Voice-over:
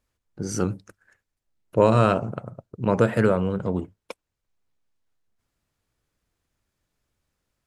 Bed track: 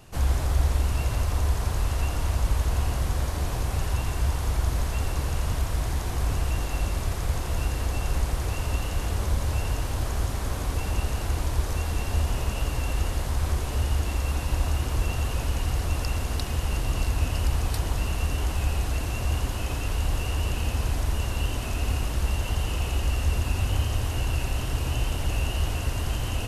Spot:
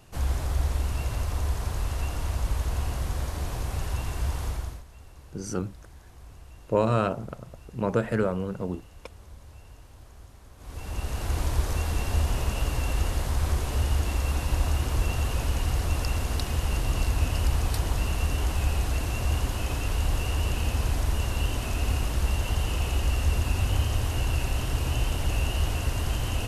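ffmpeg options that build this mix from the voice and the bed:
-filter_complex "[0:a]adelay=4950,volume=-5.5dB[a];[1:a]volume=18dB,afade=t=out:st=4.44:d=0.39:silence=0.125893,afade=t=in:st=10.57:d=0.85:silence=0.0841395[b];[a][b]amix=inputs=2:normalize=0"

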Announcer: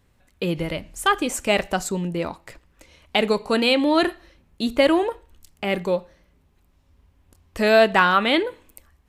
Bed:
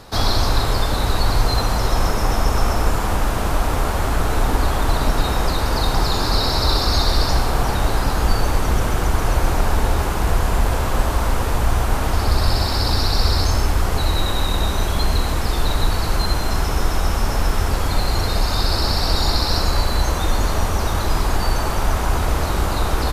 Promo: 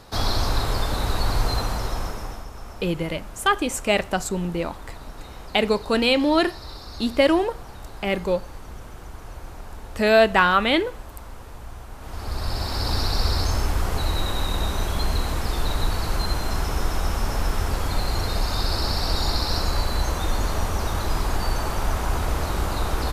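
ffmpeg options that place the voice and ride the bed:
-filter_complex "[0:a]adelay=2400,volume=-0.5dB[a];[1:a]volume=10.5dB,afade=t=out:st=1.5:d=0.97:silence=0.16788,afade=t=in:st=11.97:d=1:silence=0.16788[b];[a][b]amix=inputs=2:normalize=0"

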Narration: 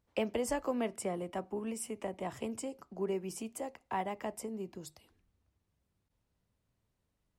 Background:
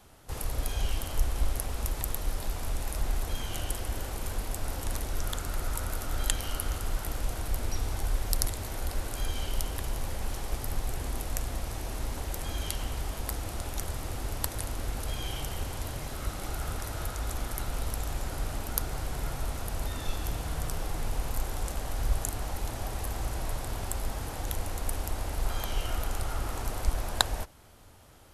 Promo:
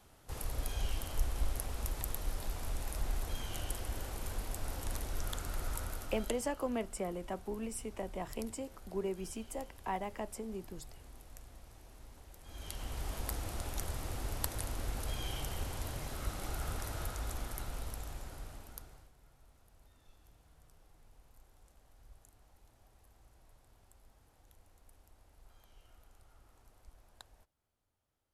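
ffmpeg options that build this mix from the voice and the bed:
-filter_complex "[0:a]adelay=5950,volume=-2dB[a];[1:a]volume=10dB,afade=t=out:st=5.75:d=0.73:silence=0.188365,afade=t=in:st=12.43:d=0.71:silence=0.158489,afade=t=out:st=16.9:d=2.22:silence=0.0501187[b];[a][b]amix=inputs=2:normalize=0"

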